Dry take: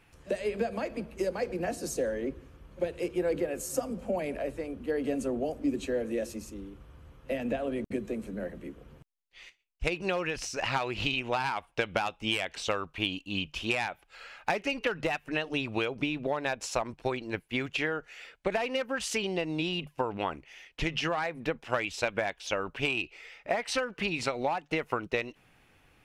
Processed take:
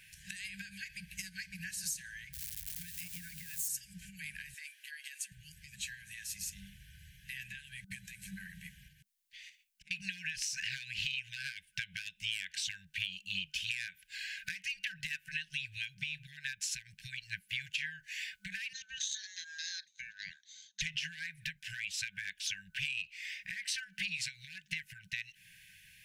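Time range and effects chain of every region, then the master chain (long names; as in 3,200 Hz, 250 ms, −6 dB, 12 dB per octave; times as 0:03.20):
0:02.33–0:03.68: spike at every zero crossing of −32 dBFS + tilt shelving filter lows +4 dB, about 710 Hz
0:04.54–0:05.32: downward compressor 5 to 1, threshold −34 dBFS + linear-phase brick-wall high-pass 360 Hz
0:08.88–0:09.91: gate with flip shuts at −32 dBFS, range −26 dB + downward compressor, threshold −56 dBFS
0:18.73–0:20.81: transistor ladder low-pass 5,200 Hz, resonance 90% + ring modulation 1,300 Hz + phaser whose notches keep moving one way rising 1.7 Hz
whole clip: spectral tilt +2.5 dB per octave; downward compressor 5 to 1, threshold −39 dBFS; brick-wall band-stop 200–1,500 Hz; level +4 dB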